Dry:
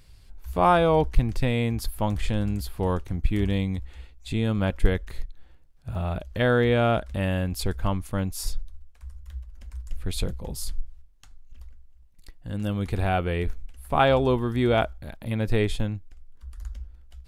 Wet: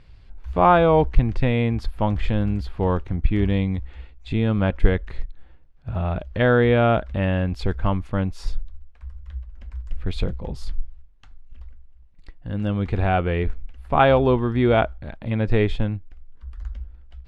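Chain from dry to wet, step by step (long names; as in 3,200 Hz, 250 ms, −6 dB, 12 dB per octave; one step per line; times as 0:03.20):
low-pass filter 2,900 Hz 12 dB per octave
level +4 dB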